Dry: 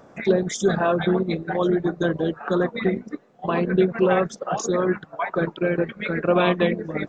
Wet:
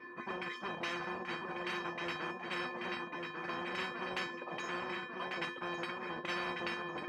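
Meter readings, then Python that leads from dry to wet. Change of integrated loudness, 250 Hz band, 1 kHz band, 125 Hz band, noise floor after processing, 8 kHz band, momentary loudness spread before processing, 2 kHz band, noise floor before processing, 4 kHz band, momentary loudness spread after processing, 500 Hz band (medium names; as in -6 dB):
-16.5 dB, -21.0 dB, -12.0 dB, -24.5 dB, -48 dBFS, no reading, 7 LU, -8.5 dB, -51 dBFS, -7.0 dB, 3 LU, -22.5 dB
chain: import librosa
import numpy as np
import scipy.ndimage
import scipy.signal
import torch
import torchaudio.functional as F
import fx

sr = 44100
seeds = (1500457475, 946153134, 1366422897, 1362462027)

p1 = fx.halfwave_hold(x, sr)
p2 = fx.comb_fb(p1, sr, f0_hz=250.0, decay_s=0.19, harmonics='all', damping=0.0, mix_pct=80)
p3 = fx.filter_lfo_lowpass(p2, sr, shape='saw_down', hz=2.4, low_hz=570.0, high_hz=2200.0, q=2.4)
p4 = fx.dynamic_eq(p3, sr, hz=2900.0, q=1.7, threshold_db=-47.0, ratio=4.0, max_db=6)
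p5 = scipy.signal.sosfilt(scipy.signal.butter(2, 79.0, 'highpass', fs=sr, output='sos'), p4)
p6 = fx.peak_eq(p5, sr, hz=1500.0, db=6.0, octaves=1.5)
p7 = fx.comb_fb(p6, sr, f0_hz=350.0, decay_s=0.27, harmonics='odd', damping=0.0, mix_pct=100)
p8 = p7 + fx.echo_feedback(p7, sr, ms=1145, feedback_pct=28, wet_db=-9, dry=0)
p9 = fx.spectral_comp(p8, sr, ratio=4.0)
y = p9 * 10.0 ** (-1.0 / 20.0)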